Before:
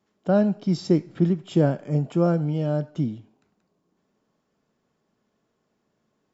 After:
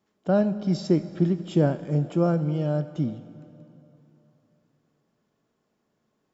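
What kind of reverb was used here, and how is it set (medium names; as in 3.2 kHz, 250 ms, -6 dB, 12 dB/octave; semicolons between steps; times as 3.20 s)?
plate-style reverb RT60 3.2 s, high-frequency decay 0.9×, DRR 13.5 dB; trim -1.5 dB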